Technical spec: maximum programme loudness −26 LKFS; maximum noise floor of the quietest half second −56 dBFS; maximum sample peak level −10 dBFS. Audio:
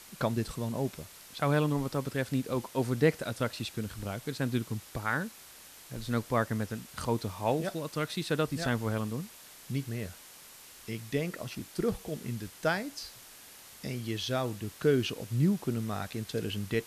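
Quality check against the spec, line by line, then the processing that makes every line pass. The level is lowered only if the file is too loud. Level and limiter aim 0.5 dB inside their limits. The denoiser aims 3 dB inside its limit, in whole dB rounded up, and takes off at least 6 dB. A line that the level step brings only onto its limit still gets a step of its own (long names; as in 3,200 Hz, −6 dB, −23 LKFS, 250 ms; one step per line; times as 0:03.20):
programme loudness −33.0 LKFS: in spec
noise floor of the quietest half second −52 dBFS: out of spec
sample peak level −11.5 dBFS: in spec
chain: broadband denoise 7 dB, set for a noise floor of −52 dBFS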